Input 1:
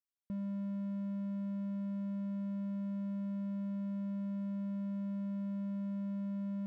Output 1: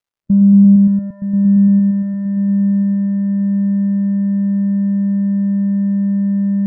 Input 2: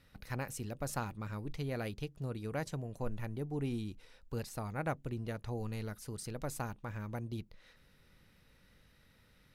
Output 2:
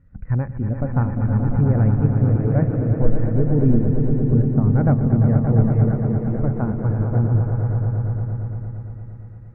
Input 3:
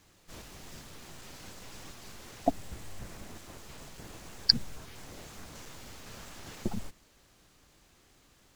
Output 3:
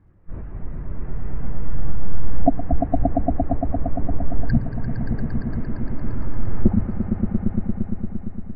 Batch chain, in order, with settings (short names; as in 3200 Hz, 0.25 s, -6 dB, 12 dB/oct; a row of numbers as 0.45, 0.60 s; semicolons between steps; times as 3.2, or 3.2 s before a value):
LPF 2000 Hz 24 dB/oct; low shelf 270 Hz +7.5 dB; in parallel at +2.5 dB: compressor, threshold -42 dBFS; on the sum: crackle 240/s -56 dBFS; on a send: swelling echo 0.115 s, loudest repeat 5, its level -7 dB; on the sum: maximiser +11.5 dB; spectral expander 1.5:1; normalise peaks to -3 dBFS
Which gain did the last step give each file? +8.0, +1.0, -2.0 dB